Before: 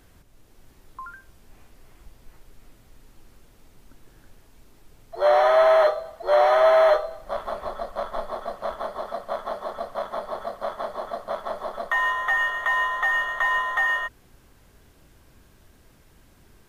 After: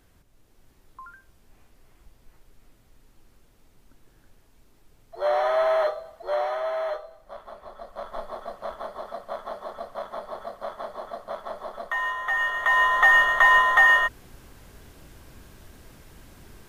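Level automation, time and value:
0:06.21 −5.5 dB
0:06.62 −12 dB
0:07.65 −12 dB
0:08.17 −4.5 dB
0:12.20 −4.5 dB
0:13.03 +6.5 dB

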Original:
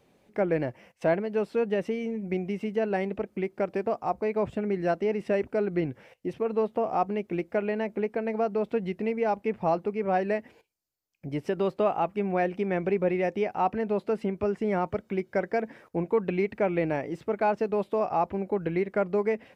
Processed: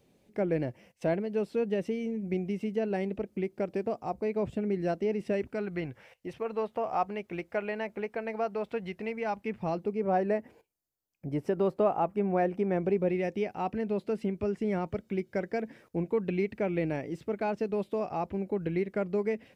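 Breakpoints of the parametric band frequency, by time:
parametric band −8.5 dB 2.2 octaves
0:05.29 1,200 Hz
0:05.84 270 Hz
0:09.04 270 Hz
0:09.71 860 Hz
0:10.21 3,200 Hz
0:12.62 3,200 Hz
0:13.21 1,000 Hz

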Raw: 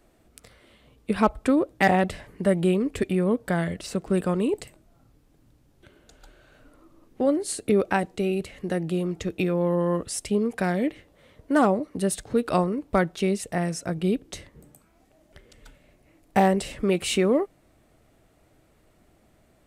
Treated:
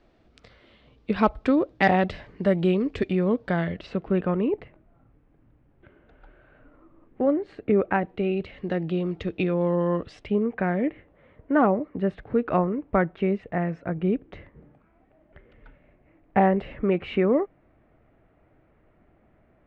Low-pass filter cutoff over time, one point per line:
low-pass filter 24 dB per octave
0:03.30 4,800 Hz
0:04.58 2,300 Hz
0:07.93 2,300 Hz
0:08.53 3,800 Hz
0:10.01 3,800 Hz
0:10.49 2,300 Hz

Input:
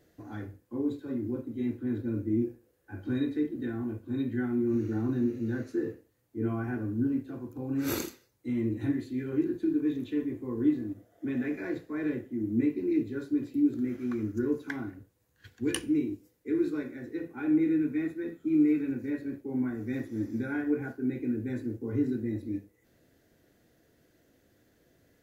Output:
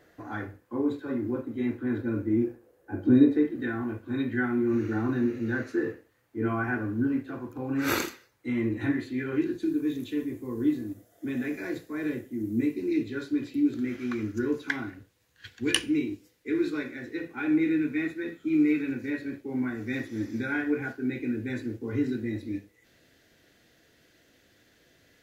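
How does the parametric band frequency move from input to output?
parametric band +12 dB 2.7 octaves
0:02.46 1,300 Hz
0:03.17 250 Hz
0:03.52 1,600 Hz
0:09.28 1,600 Hz
0:09.77 11,000 Hz
0:12.65 11,000 Hz
0:13.11 3,100 Hz

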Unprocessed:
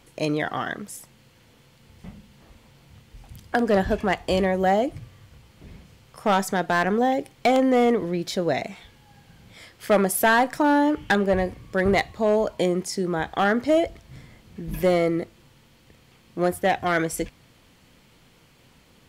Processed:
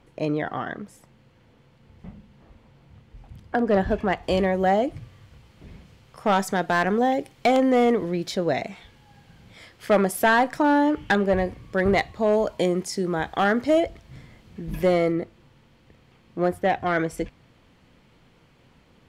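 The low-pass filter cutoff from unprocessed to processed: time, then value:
low-pass filter 6 dB per octave
1,400 Hz
from 0:03.71 2,300 Hz
from 0:04.23 4,800 Hz
from 0:06.36 9,200 Hz
from 0:08.32 5,200 Hz
from 0:12.33 11,000 Hz
from 0:13.80 5,100 Hz
from 0:15.12 2,200 Hz

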